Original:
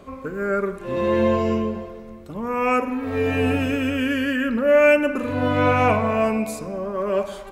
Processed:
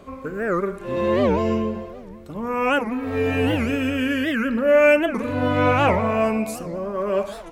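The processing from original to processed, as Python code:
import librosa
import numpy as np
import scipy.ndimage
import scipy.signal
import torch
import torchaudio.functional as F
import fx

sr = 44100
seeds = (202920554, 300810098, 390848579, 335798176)

y = fx.record_warp(x, sr, rpm=78.0, depth_cents=250.0)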